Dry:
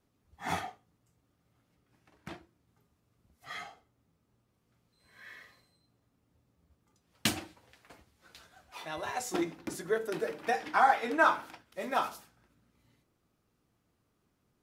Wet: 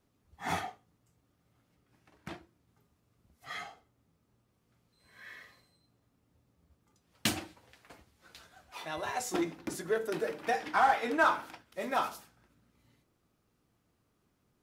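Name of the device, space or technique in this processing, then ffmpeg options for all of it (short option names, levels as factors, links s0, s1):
parallel distortion: -filter_complex "[0:a]asplit=2[s0][s1];[s1]asoftclip=type=hard:threshold=0.0355,volume=0.562[s2];[s0][s2]amix=inputs=2:normalize=0,volume=0.708"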